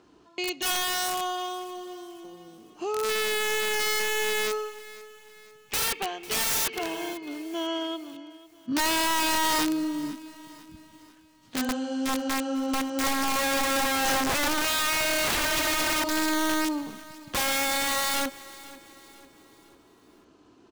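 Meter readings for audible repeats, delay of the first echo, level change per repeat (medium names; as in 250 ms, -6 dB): 3, 497 ms, -7.0 dB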